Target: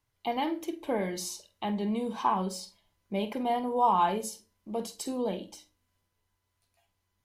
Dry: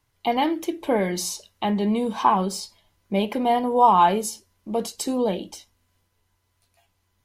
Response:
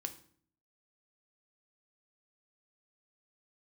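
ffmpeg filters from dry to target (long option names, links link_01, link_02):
-filter_complex "[0:a]asplit=2[link_01][link_02];[1:a]atrim=start_sample=2205,asetrate=79380,aresample=44100,adelay=48[link_03];[link_02][link_03]afir=irnorm=-1:irlink=0,volume=-5dB[link_04];[link_01][link_04]amix=inputs=2:normalize=0,volume=-8.5dB"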